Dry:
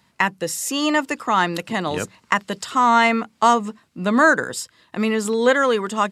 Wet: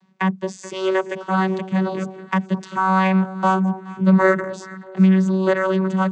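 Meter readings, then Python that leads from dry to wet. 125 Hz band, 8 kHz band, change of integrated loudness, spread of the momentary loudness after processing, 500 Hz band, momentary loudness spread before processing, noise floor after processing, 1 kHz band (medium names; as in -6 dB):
+13.0 dB, under -10 dB, 0.0 dB, 11 LU, -0.5 dB, 11 LU, -43 dBFS, -3.5 dB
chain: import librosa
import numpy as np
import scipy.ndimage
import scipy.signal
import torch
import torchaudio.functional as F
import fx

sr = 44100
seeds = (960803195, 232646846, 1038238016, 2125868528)

y = fx.vocoder(x, sr, bands=16, carrier='saw', carrier_hz=189.0)
y = fx.echo_alternate(y, sr, ms=213, hz=1000.0, feedback_pct=59, wet_db=-13.5)
y = F.gain(torch.from_numpy(y), 1.5).numpy()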